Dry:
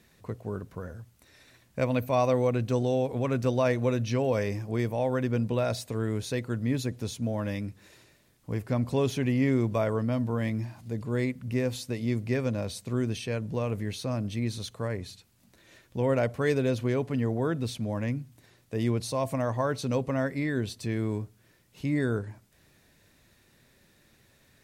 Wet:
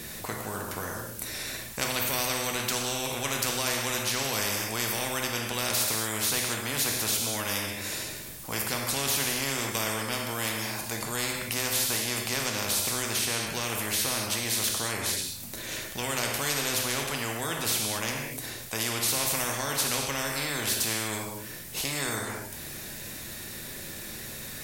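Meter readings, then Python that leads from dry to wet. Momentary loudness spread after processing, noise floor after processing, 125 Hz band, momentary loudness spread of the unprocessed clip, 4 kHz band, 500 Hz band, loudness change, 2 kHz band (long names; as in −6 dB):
10 LU, −40 dBFS, −9.0 dB, 11 LU, +14.0 dB, −6.5 dB, +1.0 dB, +8.0 dB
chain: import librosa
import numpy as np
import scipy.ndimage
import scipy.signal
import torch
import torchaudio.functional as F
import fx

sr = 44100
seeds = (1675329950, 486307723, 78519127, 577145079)

y = fx.high_shelf(x, sr, hz=6500.0, db=12.0)
y = fx.rev_gated(y, sr, seeds[0], gate_ms=270, shape='falling', drr_db=2.5)
y = fx.spectral_comp(y, sr, ratio=4.0)
y = F.gain(torch.from_numpy(y), -1.5).numpy()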